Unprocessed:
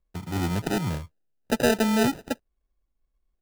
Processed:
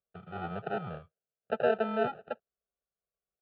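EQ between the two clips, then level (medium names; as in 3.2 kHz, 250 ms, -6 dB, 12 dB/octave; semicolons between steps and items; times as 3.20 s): dynamic bell 890 Hz, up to +8 dB, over -44 dBFS, Q 2.5; cabinet simulation 240–2100 Hz, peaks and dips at 330 Hz -5 dB, 550 Hz -5 dB, 1 kHz -9 dB, 1.7 kHz -7 dB; static phaser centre 1.4 kHz, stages 8; 0.0 dB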